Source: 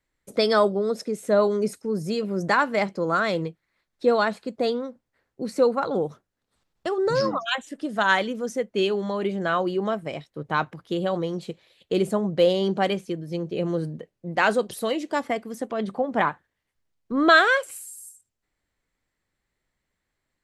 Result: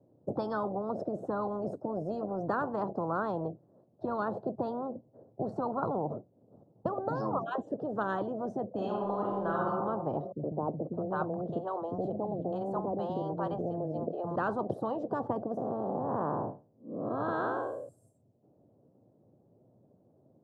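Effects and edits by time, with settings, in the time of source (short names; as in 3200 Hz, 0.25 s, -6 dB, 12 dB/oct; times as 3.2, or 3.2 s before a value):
8.67–9.63 reverb throw, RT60 0.91 s, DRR -3.5 dB
10.32–14.36 three bands offset in time lows, mids, highs 70/610 ms, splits 200/660 Hz
15.57–17.89 time blur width 0.239 s
whole clip: elliptic band-pass 110–650 Hz, stop band 50 dB; spectral compressor 10:1; gain -6.5 dB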